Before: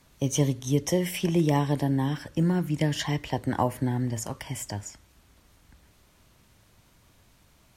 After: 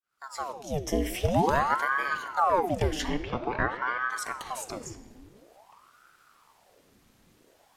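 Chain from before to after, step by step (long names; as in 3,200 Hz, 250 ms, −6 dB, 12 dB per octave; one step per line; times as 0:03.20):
fade in at the beginning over 1.22 s
0:03.08–0:04.10: low-pass filter 4,000 Hz 24 dB per octave
rectangular room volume 2,700 cubic metres, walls mixed, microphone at 0.83 metres
ring modulator whose carrier an LFO sweeps 760 Hz, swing 85%, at 0.49 Hz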